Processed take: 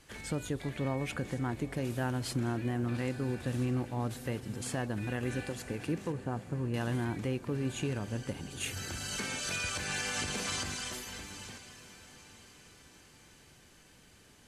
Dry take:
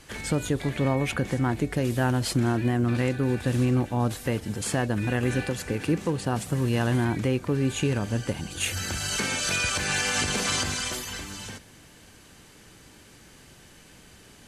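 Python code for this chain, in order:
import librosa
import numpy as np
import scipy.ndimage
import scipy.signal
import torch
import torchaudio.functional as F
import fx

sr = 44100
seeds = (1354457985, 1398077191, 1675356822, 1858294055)

y = fx.lowpass(x, sr, hz=1500.0, slope=12, at=(6.12, 6.74))
y = fx.echo_diffused(y, sr, ms=884, feedback_pct=48, wet_db=-15.5)
y = y * 10.0 ** (-9.0 / 20.0)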